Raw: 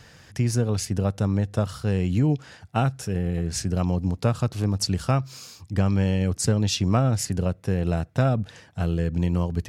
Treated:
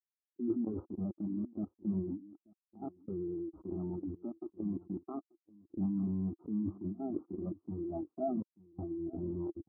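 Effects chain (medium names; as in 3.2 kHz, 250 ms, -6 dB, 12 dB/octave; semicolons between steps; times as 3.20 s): coarse spectral quantiser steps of 15 dB; static phaser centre 490 Hz, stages 6; bit crusher 5-bit; high-pass 100 Hz 6 dB/octave; level held to a coarse grid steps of 12 dB; steep low-pass 1.4 kHz 72 dB/octave; peaking EQ 330 Hz +9.5 dB 0.48 oct; level-controlled noise filter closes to 340 Hz, open at -29 dBFS; compressor with a negative ratio -40 dBFS, ratio -1; on a send: delay 885 ms -9.5 dB; on the sum: spectral contrast expander 2.5:1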